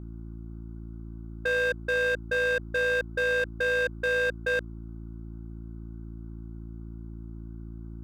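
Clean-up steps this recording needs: clip repair -22.5 dBFS; de-hum 56.2 Hz, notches 6; denoiser 30 dB, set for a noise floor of -40 dBFS

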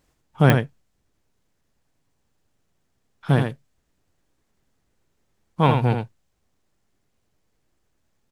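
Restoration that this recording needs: de-click; inverse comb 82 ms -5.5 dB

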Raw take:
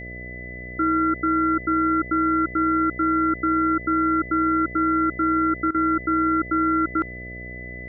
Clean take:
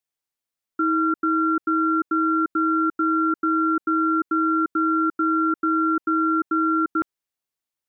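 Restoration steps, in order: de-hum 61.1 Hz, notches 11; notch 2000 Hz, Q 30; interpolate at 5.71, 34 ms

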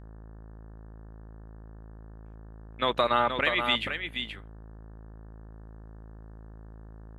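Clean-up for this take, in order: de-hum 54.3 Hz, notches 33; inverse comb 0.476 s -7 dB

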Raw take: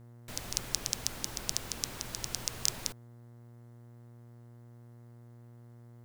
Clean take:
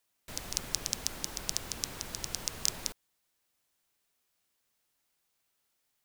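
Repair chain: de-hum 118.7 Hz, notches 18

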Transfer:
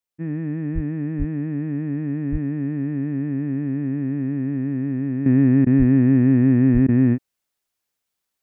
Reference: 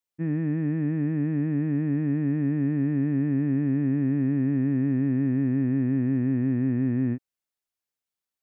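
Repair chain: de-plosive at 0.74/1.18/2.31/5.78/6.73; interpolate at 5.65/6.87, 14 ms; gain 0 dB, from 5.26 s -9 dB

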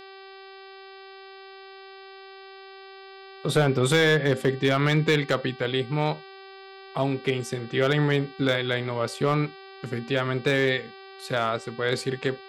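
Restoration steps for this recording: clip repair -13 dBFS; de-hum 386.8 Hz, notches 13

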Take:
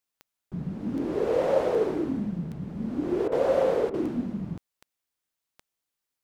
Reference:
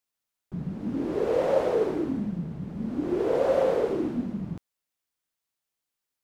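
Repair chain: de-click; interpolate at 3.28/3.9, 37 ms

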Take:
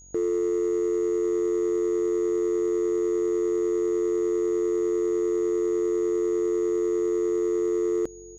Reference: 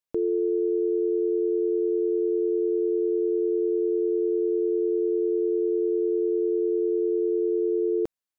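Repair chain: clip repair -20 dBFS; de-hum 46.6 Hz, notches 20; notch 6700 Hz, Q 30; inverse comb 1.097 s -21 dB

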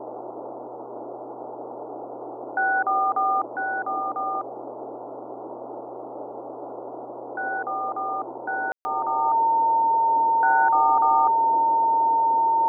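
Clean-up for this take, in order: de-hum 124.5 Hz, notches 5; notch 910 Hz, Q 30; room tone fill 8.72–8.85; noise print and reduce 30 dB

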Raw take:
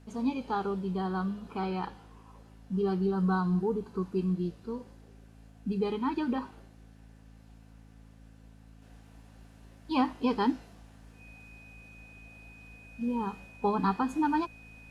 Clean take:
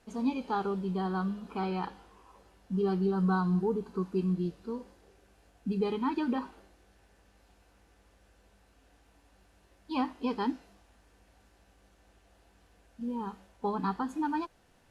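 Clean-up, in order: de-hum 54.4 Hz, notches 5; notch 2500 Hz, Q 30; gain correction -4 dB, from 8.82

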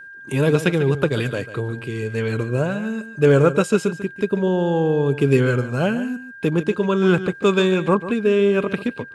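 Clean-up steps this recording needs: notch 1600 Hz, Q 30; inverse comb 0.144 s -13 dB

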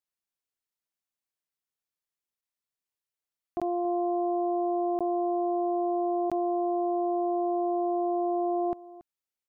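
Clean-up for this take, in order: interpolate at 2.41/3.6/4.99/6.3, 16 ms; inverse comb 0.28 s -18 dB

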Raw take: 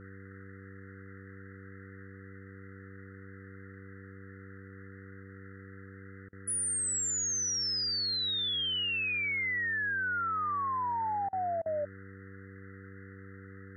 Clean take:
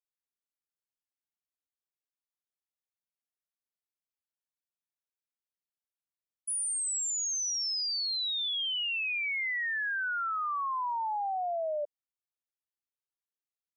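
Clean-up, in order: de-hum 96.8 Hz, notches 5; interpolate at 6.29/11.29/11.62, 37 ms; noise print and reduce 30 dB

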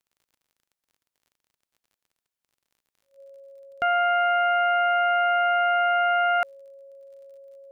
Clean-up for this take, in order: de-click; notch 550 Hz, Q 30

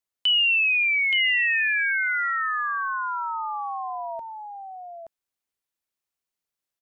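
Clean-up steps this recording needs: inverse comb 0.874 s -5.5 dB

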